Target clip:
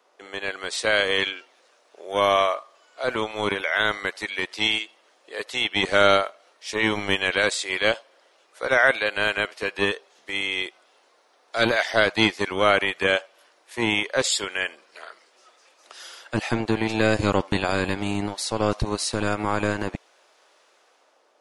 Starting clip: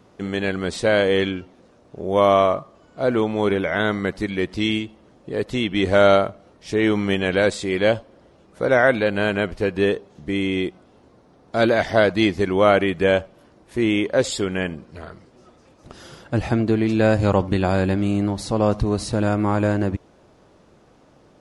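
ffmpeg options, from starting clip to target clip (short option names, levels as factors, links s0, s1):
-filter_complex "[0:a]acrossover=split=460|1500[s0][s1][s2];[s0]acrusher=bits=2:mix=0:aa=0.5[s3];[s2]dynaudnorm=f=110:g=11:m=2.82[s4];[s3][s1][s4]amix=inputs=3:normalize=0,volume=0.631"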